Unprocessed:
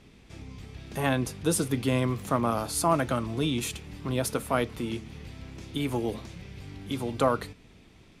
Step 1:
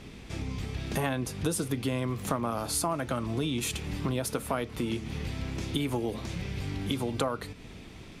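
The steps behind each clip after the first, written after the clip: compressor 6:1, threshold -36 dBFS, peak gain reduction 16.5 dB; gain +8.5 dB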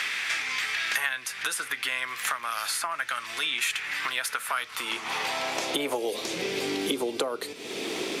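high-pass sweep 1700 Hz -> 390 Hz, 4.31–6.37; three-band squash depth 100%; gain +5 dB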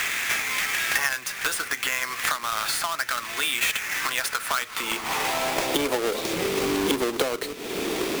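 half-waves squared off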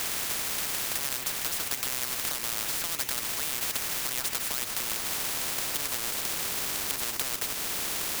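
spectral compressor 10:1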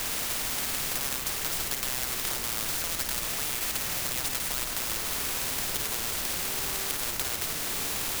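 added noise pink -42 dBFS; on a send: flutter echo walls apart 9.2 m, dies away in 0.47 s; on the sum: gain -1 dB

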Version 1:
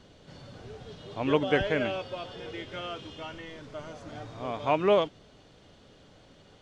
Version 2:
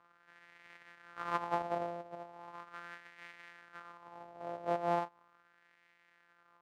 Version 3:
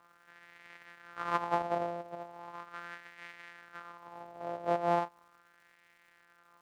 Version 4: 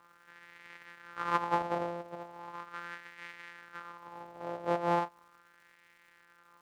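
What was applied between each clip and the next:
sample sorter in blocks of 256 samples; wah 0.38 Hz 640–2000 Hz, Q 3.2; gain +1 dB
crackle 360/s -64 dBFS; gain +3.5 dB
notch 680 Hz, Q 15; gain +2 dB

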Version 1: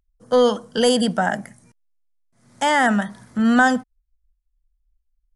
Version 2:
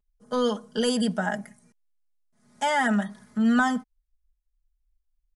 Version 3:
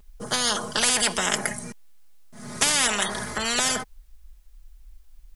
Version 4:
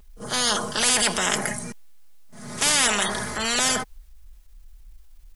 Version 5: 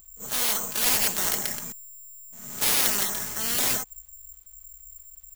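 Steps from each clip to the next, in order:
comb 4.8 ms, depth 77%; gain -8.5 dB
spectral compressor 10:1; gain +8 dB
reverse echo 35 ms -18 dB; transient shaper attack -5 dB, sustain +2 dB; gain +2 dB
careless resampling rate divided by 6×, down none, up zero stuff; gain -10 dB

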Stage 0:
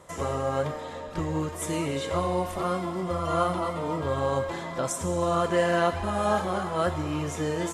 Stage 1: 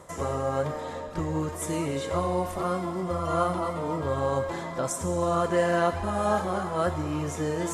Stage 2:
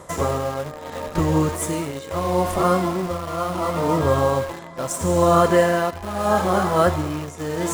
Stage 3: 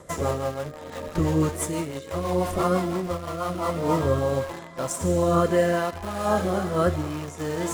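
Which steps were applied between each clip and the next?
bell 3000 Hz -4.5 dB 1.1 oct; reverse; upward compressor, threshold -29 dBFS; reverse
tremolo 0.75 Hz, depth 72%; in parallel at -7.5 dB: bit-crush 6-bit; on the sum: gain +7 dB
rotary speaker horn 6 Hz, later 0.75 Hz, at 3.35; gain -1.5 dB

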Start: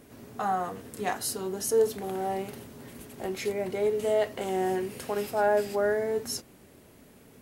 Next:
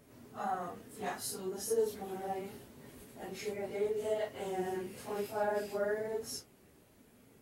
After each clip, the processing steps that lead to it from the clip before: phase scrambler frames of 0.1 s; gain -8 dB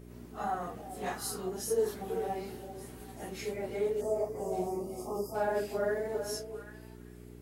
spectral delete 4.01–5.35, 1300–4600 Hz; delay with a stepping band-pass 0.392 s, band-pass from 490 Hz, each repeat 1.4 oct, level -7 dB; buzz 60 Hz, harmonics 7, -52 dBFS -2 dB/oct; gain +2 dB

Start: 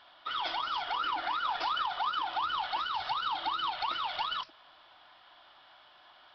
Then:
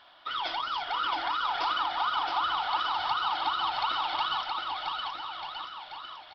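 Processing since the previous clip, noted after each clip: bouncing-ball echo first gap 0.67 s, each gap 0.85×, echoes 5; gain +1.5 dB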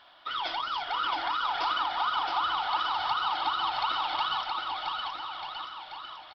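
outdoor echo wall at 110 m, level -15 dB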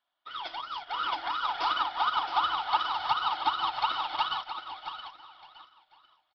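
upward expander 2.5:1, over -47 dBFS; gain +4.5 dB

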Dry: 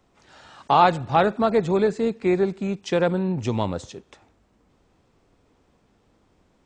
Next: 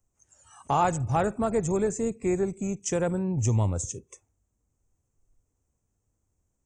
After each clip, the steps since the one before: spectral noise reduction 19 dB; EQ curve 110 Hz 0 dB, 180 Hz -11 dB, 2800 Hz -16 dB, 4200 Hz -25 dB, 6400 Hz +6 dB; in parallel at -2 dB: compressor, threshold -42 dBFS, peak gain reduction 16 dB; on the sum: gain +5 dB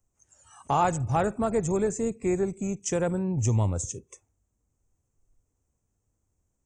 nothing audible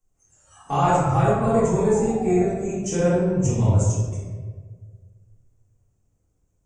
painted sound fall, 0.88–2.45, 660–1400 Hz -39 dBFS; reverb RT60 1.5 s, pre-delay 3 ms, DRR -11.5 dB; gain -7 dB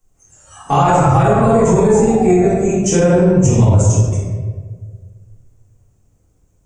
maximiser +14 dB; gain -2.5 dB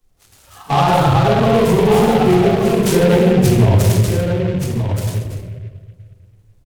bin magnitudes rounded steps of 15 dB; echo 1.175 s -7 dB; noise-modulated delay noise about 2000 Hz, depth 0.045 ms; gain -1 dB

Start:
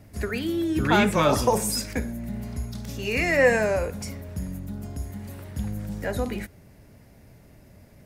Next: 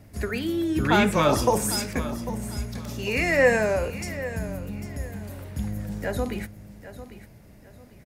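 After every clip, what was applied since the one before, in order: feedback echo 0.798 s, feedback 29%, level -14 dB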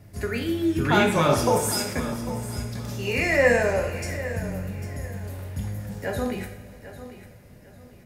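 two-slope reverb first 0.58 s, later 4 s, from -18 dB, DRR 2.5 dB; gain -1.5 dB

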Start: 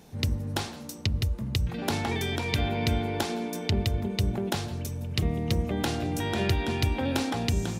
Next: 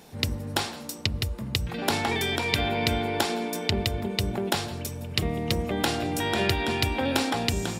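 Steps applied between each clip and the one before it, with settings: low shelf 260 Hz -9.5 dB; notch 6200 Hz, Q 13; gain +5.5 dB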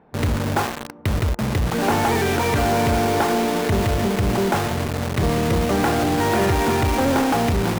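ladder low-pass 1900 Hz, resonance 20%; in parallel at +2 dB: companded quantiser 2-bit; on the sum: gain +3 dB

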